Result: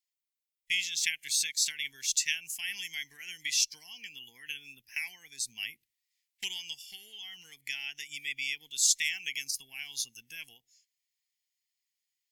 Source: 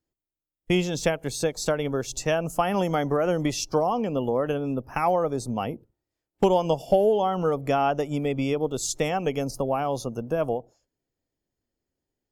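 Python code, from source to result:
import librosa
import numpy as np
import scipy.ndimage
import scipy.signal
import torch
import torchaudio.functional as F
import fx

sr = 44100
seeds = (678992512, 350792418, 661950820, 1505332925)

y = fx.rider(x, sr, range_db=4, speed_s=0.5)
y = scipy.signal.sosfilt(scipy.signal.ellip(4, 1.0, 40, 2000.0, 'highpass', fs=sr, output='sos'), y)
y = y * 10.0 ** (4.5 / 20.0)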